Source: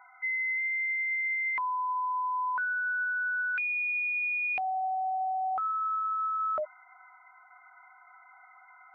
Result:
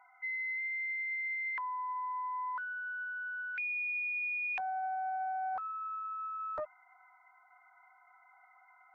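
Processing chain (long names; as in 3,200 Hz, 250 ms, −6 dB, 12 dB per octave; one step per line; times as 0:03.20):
parametric band 1,400 Hz −6 dB 1 octave
highs frequency-modulated by the lows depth 0.61 ms
level −3.5 dB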